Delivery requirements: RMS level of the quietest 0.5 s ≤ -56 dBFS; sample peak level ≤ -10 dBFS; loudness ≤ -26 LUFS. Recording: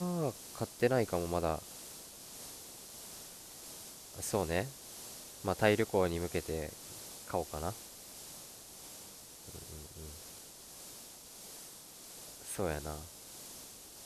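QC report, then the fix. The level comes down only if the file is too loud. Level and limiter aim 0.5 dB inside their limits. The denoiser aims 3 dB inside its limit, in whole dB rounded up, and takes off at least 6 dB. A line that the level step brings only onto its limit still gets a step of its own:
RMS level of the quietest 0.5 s -52 dBFS: fail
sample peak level -13.5 dBFS: OK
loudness -38.5 LUFS: OK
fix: denoiser 7 dB, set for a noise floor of -52 dBFS

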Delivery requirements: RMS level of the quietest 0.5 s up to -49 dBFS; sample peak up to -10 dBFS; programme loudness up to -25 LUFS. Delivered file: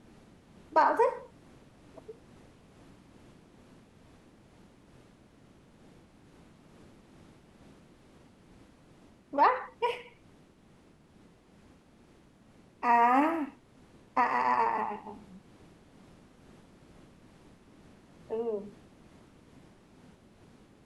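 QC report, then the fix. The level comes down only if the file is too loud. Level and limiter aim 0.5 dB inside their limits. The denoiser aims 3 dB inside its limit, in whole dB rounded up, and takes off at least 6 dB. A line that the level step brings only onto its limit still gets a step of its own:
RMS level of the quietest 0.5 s -60 dBFS: OK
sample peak -13.0 dBFS: OK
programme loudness -28.5 LUFS: OK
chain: none

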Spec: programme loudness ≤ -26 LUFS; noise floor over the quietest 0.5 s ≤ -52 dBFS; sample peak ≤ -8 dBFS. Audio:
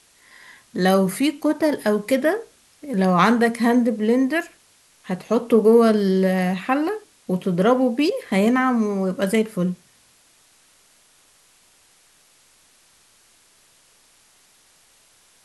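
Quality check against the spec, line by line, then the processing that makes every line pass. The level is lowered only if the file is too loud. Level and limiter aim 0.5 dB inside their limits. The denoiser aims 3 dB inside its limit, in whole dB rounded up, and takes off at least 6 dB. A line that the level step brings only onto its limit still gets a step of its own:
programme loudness -20.0 LUFS: fail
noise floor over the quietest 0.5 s -57 dBFS: OK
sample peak -3.5 dBFS: fail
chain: gain -6.5 dB

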